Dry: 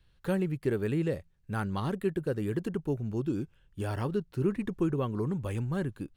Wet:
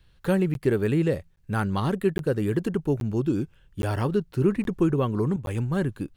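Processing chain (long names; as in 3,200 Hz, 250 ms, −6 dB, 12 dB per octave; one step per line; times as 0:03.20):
0:05.36–0:05.76: downward expander −30 dBFS
regular buffer underruns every 0.82 s, samples 512, zero, from 0:00.54
level +6.5 dB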